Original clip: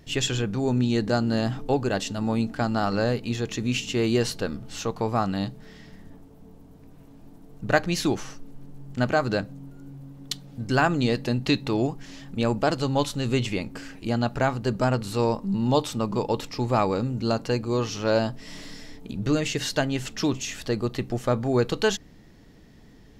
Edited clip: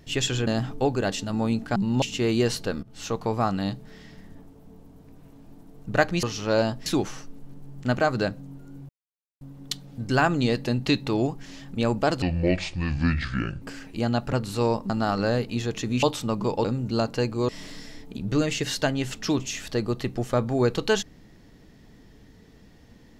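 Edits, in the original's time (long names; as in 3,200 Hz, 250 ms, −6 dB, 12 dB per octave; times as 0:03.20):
0:00.47–0:01.35: remove
0:02.64–0:03.77: swap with 0:15.48–0:15.74
0:04.58–0:04.85: fade in, from −17 dB
0:10.01: splice in silence 0.52 s
0:12.82–0:13.70: play speed 63%
0:14.41–0:14.91: remove
0:16.36–0:16.96: remove
0:17.80–0:18.43: move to 0:07.98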